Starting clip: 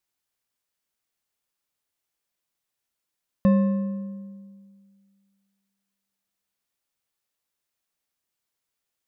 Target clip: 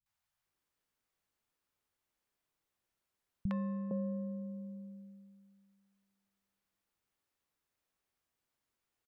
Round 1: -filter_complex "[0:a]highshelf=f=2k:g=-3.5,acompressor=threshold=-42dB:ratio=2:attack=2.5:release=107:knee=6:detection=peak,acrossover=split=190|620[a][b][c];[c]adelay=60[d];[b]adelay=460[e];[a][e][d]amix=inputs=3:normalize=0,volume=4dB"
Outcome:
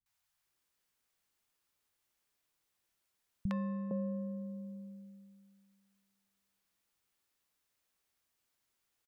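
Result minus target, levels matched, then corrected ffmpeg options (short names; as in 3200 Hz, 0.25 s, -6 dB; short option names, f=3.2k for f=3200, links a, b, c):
2000 Hz band +2.5 dB
-filter_complex "[0:a]highshelf=f=2k:g=-11,acompressor=threshold=-42dB:ratio=2:attack=2.5:release=107:knee=6:detection=peak,acrossover=split=190|620[a][b][c];[c]adelay=60[d];[b]adelay=460[e];[a][e][d]amix=inputs=3:normalize=0,volume=4dB"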